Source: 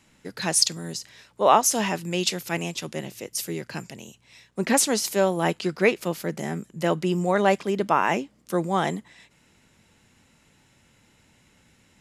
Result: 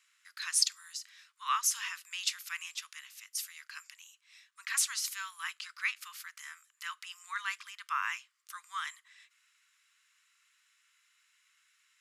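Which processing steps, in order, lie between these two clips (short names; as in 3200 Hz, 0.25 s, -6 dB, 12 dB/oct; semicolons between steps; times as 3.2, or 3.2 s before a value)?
steep high-pass 1100 Hz 72 dB/oct; gain -7 dB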